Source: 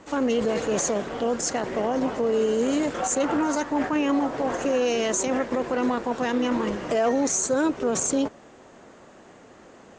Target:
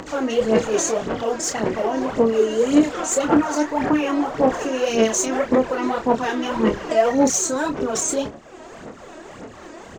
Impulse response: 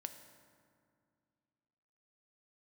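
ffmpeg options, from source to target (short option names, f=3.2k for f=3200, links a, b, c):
-filter_complex "[0:a]aphaser=in_gain=1:out_gain=1:delay=3.2:decay=0.68:speed=1.8:type=sinusoidal,acompressor=mode=upward:threshold=-31dB:ratio=2.5,asplit=2[a][b];[b]adelay=27,volume=-6.5dB[c];[a][c]amix=inputs=2:normalize=0"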